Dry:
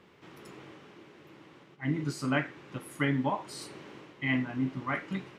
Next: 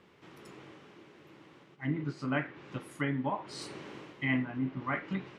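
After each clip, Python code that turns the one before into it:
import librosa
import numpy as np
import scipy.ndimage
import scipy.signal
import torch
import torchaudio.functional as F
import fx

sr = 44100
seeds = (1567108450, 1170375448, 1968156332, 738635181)

y = fx.env_lowpass_down(x, sr, base_hz=2900.0, full_db=-29.5)
y = fx.rider(y, sr, range_db=4, speed_s=0.5)
y = y * 10.0 ** (-2.0 / 20.0)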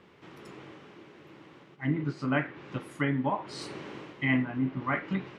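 y = fx.high_shelf(x, sr, hz=6700.0, db=-7.0)
y = y * 10.0 ** (4.0 / 20.0)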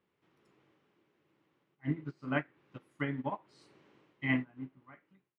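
y = fx.fade_out_tail(x, sr, length_s=1.11)
y = fx.upward_expand(y, sr, threshold_db=-37.0, expansion=2.5)
y = y * 10.0 ** (-2.5 / 20.0)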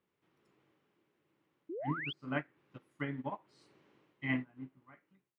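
y = fx.spec_paint(x, sr, seeds[0], shape='rise', start_s=1.69, length_s=0.44, low_hz=300.0, high_hz=3500.0, level_db=-37.0)
y = y * 10.0 ** (-3.5 / 20.0)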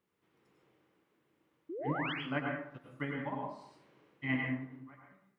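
y = fx.rev_plate(x, sr, seeds[1], rt60_s=0.68, hf_ratio=0.55, predelay_ms=85, drr_db=0.0)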